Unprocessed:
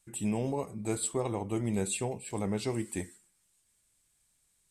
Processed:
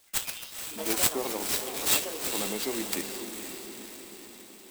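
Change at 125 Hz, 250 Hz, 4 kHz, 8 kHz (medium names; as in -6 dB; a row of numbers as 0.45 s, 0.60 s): -13.0 dB, -4.0 dB, +14.5 dB, +8.0 dB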